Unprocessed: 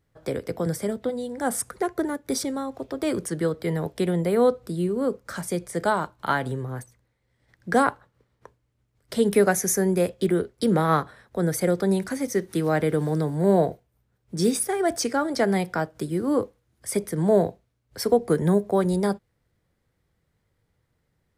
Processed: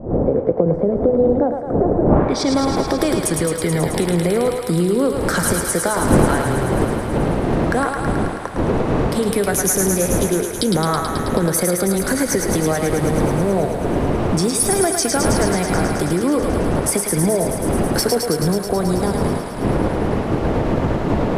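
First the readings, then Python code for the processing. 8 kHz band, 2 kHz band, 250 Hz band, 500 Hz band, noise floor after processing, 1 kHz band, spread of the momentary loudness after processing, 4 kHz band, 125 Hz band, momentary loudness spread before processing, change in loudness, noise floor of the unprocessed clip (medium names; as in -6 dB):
+11.0 dB, +7.0 dB, +7.5 dB, +6.0 dB, -25 dBFS, +6.5 dB, 4 LU, +10.0 dB, +9.0 dB, 10 LU, +6.5 dB, -73 dBFS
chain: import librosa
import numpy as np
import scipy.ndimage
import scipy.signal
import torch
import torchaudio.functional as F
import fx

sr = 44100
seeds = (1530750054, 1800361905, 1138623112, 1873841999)

y = fx.dmg_wind(x, sr, seeds[0], corner_hz=390.0, level_db=-26.0)
y = fx.recorder_agc(y, sr, target_db=-10.0, rise_db_per_s=69.0, max_gain_db=30)
y = fx.filter_sweep_lowpass(y, sr, from_hz=580.0, to_hz=12000.0, start_s=2.05, end_s=2.59, q=1.5)
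y = fx.echo_thinned(y, sr, ms=108, feedback_pct=82, hz=530.0, wet_db=-4)
y = F.gain(torch.from_numpy(y), -1.0).numpy()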